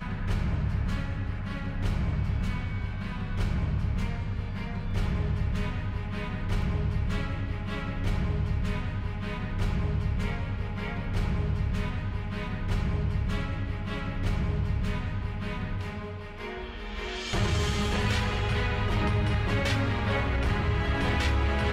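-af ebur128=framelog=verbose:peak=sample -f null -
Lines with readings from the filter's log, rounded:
Integrated loudness:
  I:         -30.4 LUFS
  Threshold: -40.4 LUFS
Loudness range:
  LRA:         4.5 LU
  Threshold: -50.7 LUFS
  LRA low:   -32.0 LUFS
  LRA high:  -27.5 LUFS
Sample peak:
  Peak:      -14.9 dBFS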